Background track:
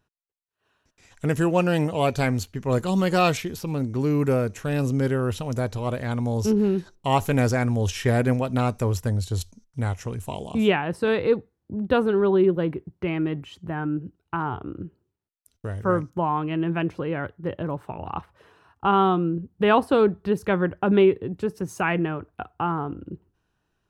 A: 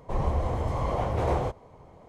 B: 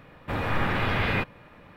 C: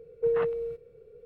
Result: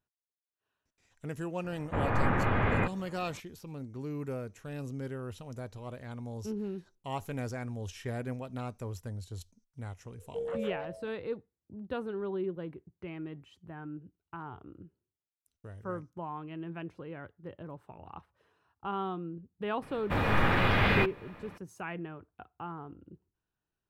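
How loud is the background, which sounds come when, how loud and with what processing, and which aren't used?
background track -15.5 dB
1.64 s: add B -1 dB + low-pass 1.6 kHz
10.12 s: add C -11 dB + ever faster or slower copies 211 ms, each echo +3 st, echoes 2
19.82 s: add B
not used: A

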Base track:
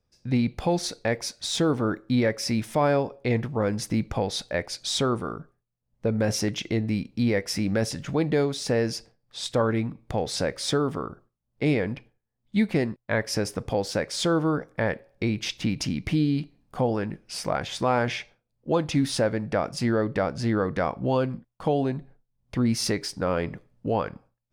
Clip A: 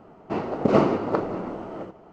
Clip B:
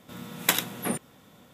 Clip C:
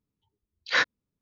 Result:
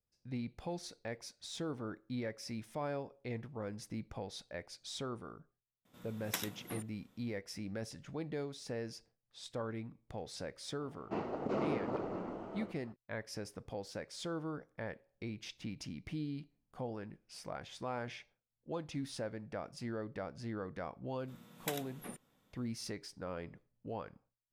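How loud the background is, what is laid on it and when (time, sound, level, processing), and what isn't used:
base track -17 dB
5.85 s: add B -15.5 dB
10.81 s: add A -10.5 dB + peak limiter -15.5 dBFS
21.19 s: add B -18 dB
not used: C

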